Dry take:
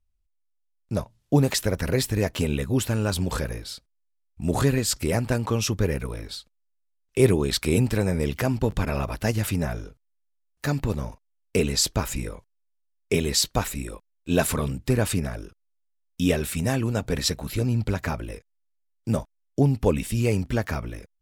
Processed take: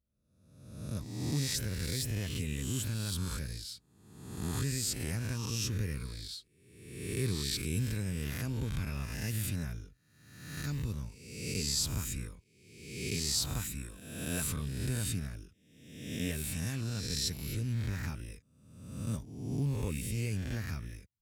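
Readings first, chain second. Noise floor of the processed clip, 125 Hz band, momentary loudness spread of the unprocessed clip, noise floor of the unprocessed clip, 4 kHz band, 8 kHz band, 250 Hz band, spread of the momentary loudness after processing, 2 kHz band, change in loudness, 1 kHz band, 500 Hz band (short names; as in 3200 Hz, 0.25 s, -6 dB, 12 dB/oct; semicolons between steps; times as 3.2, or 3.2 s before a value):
-69 dBFS, -8.5 dB, 12 LU, -72 dBFS, -7.0 dB, -6.0 dB, -12.5 dB, 14 LU, -10.5 dB, -10.0 dB, -17.5 dB, -19.0 dB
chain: spectral swells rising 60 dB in 1.03 s; HPF 57 Hz; passive tone stack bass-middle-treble 6-0-2; in parallel at -2 dB: limiter -32 dBFS, peak gain reduction 10.5 dB; on the sum: short-mantissa float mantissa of 6-bit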